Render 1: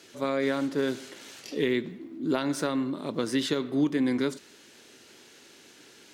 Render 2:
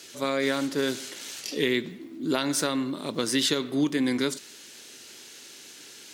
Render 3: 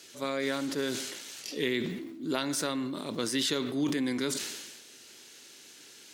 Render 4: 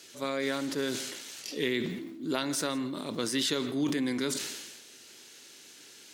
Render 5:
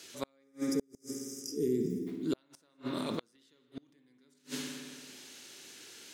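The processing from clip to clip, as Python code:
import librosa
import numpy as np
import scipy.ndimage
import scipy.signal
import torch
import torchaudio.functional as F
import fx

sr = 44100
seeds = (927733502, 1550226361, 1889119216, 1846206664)

y1 = fx.high_shelf(x, sr, hz=2600.0, db=11.5)
y2 = fx.sustainer(y1, sr, db_per_s=40.0)
y2 = F.gain(torch.from_numpy(y2), -5.5).numpy()
y3 = y2 + 10.0 ** (-21.0 / 20.0) * np.pad(y2, (int(166 * sr / 1000.0), 0))[:len(y2)]
y4 = fx.spec_box(y3, sr, start_s=0.44, length_s=1.63, low_hz=490.0, high_hz=4800.0, gain_db=-28)
y4 = fx.rev_spring(y4, sr, rt60_s=1.9, pass_ms=(55,), chirp_ms=50, drr_db=5.5)
y4 = fx.gate_flip(y4, sr, shuts_db=-21.0, range_db=-38)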